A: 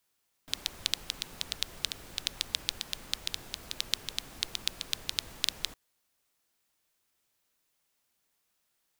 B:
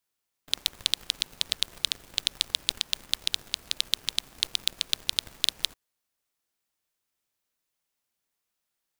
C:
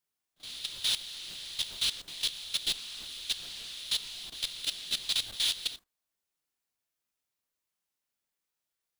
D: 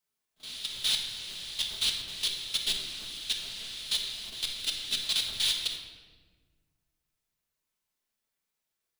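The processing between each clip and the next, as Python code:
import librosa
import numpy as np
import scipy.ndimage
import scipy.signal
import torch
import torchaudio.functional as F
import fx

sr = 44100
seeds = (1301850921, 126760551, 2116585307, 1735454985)

y1 = fx.leveller(x, sr, passes=3)
y2 = fx.phase_scramble(y1, sr, seeds[0], window_ms=200)
y2 = fx.level_steps(y2, sr, step_db=15)
y2 = F.gain(torch.from_numpy(y2), 2.5).numpy()
y3 = fx.room_shoebox(y2, sr, seeds[1], volume_m3=1400.0, walls='mixed', distance_m=1.5)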